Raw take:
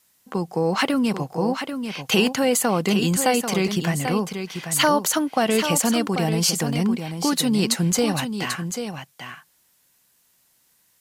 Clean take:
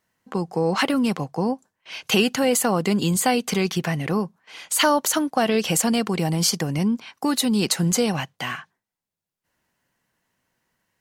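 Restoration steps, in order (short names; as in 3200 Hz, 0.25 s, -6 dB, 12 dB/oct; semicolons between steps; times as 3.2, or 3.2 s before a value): interpolate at 0.81/1.33/2.27/3.17/3.68/5.8/6.73/7.99, 1 ms; expander -55 dBFS, range -21 dB; inverse comb 0.79 s -8 dB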